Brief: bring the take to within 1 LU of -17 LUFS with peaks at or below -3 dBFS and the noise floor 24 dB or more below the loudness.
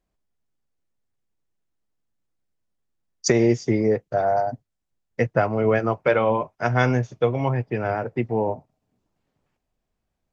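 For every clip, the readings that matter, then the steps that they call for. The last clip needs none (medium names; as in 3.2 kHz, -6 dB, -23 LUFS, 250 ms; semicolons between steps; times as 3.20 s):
loudness -22.5 LUFS; peak level -4.0 dBFS; loudness target -17.0 LUFS
-> trim +5.5 dB; peak limiter -3 dBFS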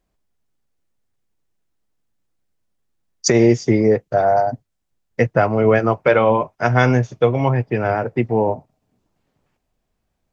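loudness -17.5 LUFS; peak level -3.0 dBFS; noise floor -74 dBFS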